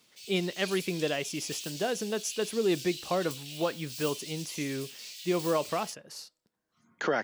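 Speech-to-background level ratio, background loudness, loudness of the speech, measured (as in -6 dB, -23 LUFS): 8.5 dB, -40.5 LUFS, -32.0 LUFS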